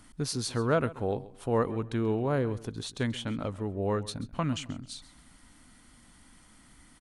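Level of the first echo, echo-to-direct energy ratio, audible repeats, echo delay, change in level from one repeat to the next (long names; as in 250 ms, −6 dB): −18.0 dB, −17.5 dB, 2, 134 ms, −11.5 dB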